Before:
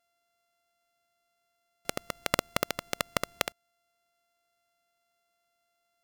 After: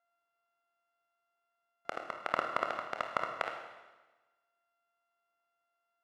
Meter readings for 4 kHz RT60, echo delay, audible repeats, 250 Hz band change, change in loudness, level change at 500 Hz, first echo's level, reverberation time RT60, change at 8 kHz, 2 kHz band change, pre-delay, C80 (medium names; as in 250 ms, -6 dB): 1.2 s, no echo, no echo, -10.0 dB, -4.0 dB, -3.5 dB, no echo, 1.2 s, under -20 dB, -3.5 dB, 26 ms, 7.0 dB